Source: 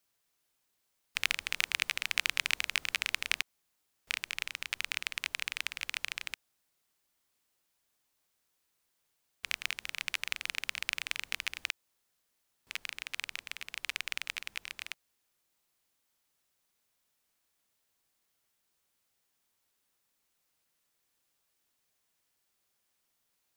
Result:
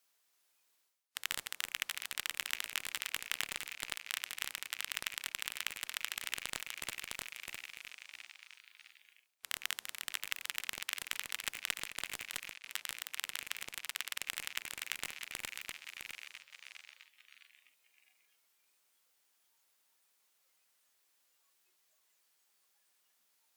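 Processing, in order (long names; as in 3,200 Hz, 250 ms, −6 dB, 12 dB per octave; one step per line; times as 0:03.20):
feedback delay that plays each chunk backwards 329 ms, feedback 61%, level −8 dB
high-pass filter 560 Hz 6 dB per octave
reversed playback
downward compressor 6 to 1, threshold −47 dBFS, peak gain reduction 22.5 dB
reversed playback
noise reduction from a noise print of the clip's start 11 dB
harmonic generator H 2 −22 dB, 7 −10 dB, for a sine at −25.5 dBFS
level +12 dB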